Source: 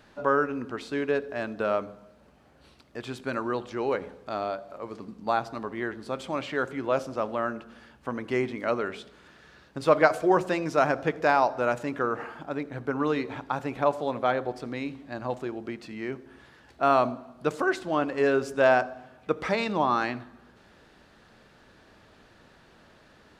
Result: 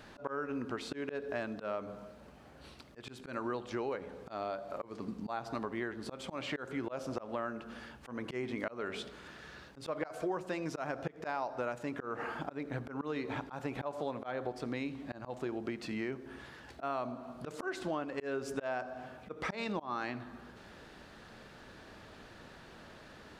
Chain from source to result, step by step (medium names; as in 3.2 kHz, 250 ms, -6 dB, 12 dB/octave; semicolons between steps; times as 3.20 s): slow attack 291 ms; compression 6:1, threshold -37 dBFS, peak gain reduction 18.5 dB; trim +3 dB